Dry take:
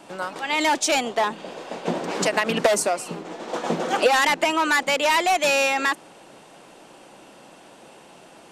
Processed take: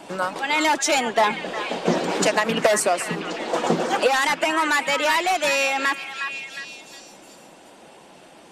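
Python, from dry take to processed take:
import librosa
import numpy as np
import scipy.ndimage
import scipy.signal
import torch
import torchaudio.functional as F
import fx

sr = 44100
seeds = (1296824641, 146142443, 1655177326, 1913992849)

y = fx.spec_quant(x, sr, step_db=15)
y = fx.rider(y, sr, range_db=4, speed_s=0.5)
y = fx.echo_stepped(y, sr, ms=360, hz=1500.0, octaves=0.7, feedback_pct=70, wet_db=-5.5)
y = F.gain(torch.from_numpy(y), 1.5).numpy()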